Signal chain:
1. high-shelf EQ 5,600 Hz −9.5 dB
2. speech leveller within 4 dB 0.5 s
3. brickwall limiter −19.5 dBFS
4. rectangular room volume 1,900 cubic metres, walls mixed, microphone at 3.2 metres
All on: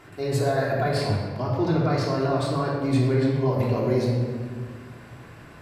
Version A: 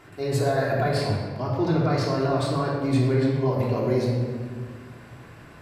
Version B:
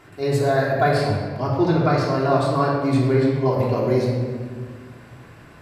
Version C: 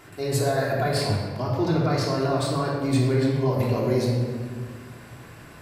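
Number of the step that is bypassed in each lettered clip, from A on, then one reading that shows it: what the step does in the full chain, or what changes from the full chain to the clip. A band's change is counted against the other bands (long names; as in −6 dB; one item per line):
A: 2, change in momentary loudness spread −3 LU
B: 3, average gain reduction 1.5 dB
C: 1, 8 kHz band +6.5 dB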